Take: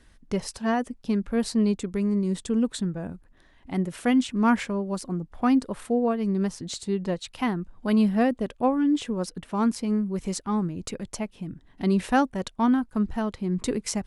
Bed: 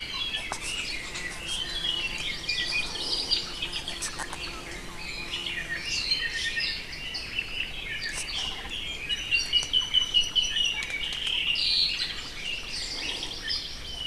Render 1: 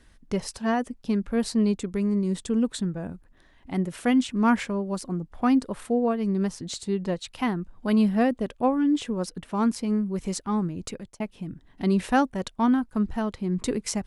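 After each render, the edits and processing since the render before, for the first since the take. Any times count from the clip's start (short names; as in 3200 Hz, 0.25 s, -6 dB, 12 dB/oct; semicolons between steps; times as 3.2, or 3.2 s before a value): 10.75–11.2 fade out equal-power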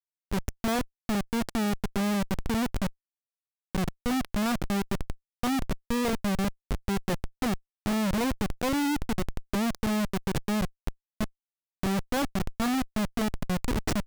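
Schmitt trigger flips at -24.5 dBFS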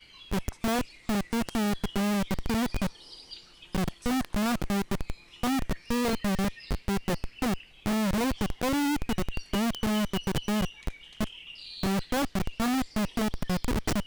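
add bed -18.5 dB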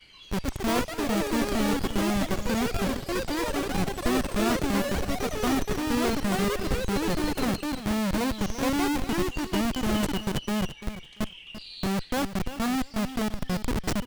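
feedback echo 0.341 s, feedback 17%, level -12.5 dB; echoes that change speed 0.218 s, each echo +6 st, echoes 3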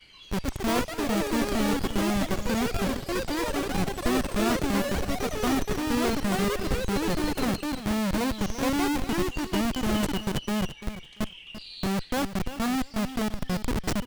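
nothing audible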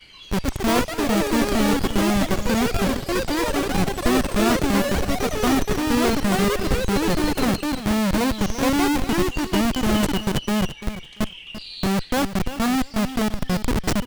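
gain +6 dB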